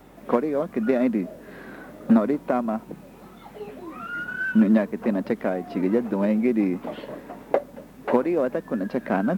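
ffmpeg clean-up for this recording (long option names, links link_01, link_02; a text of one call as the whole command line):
ffmpeg -i in.wav -af "bandreject=frequency=45.6:width_type=h:width=4,bandreject=frequency=91.2:width_type=h:width=4,bandreject=frequency=136.8:width_type=h:width=4,bandreject=frequency=182.4:width_type=h:width=4,bandreject=frequency=228:width_type=h:width=4" out.wav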